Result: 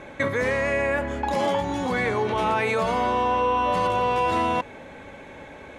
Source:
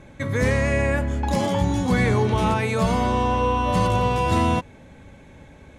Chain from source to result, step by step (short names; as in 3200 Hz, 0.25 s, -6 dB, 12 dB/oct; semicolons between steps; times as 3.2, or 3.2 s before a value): in parallel at -0.5 dB: negative-ratio compressor -27 dBFS, ratio -0.5; on the sum: tone controls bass -15 dB, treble -9 dB; gain -1 dB